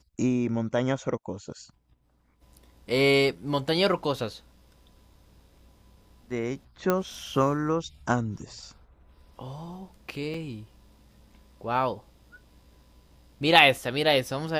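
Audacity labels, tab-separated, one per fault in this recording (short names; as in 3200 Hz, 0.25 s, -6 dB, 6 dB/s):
6.900000	6.900000	pop -10 dBFS
10.340000	10.340000	gap 4.1 ms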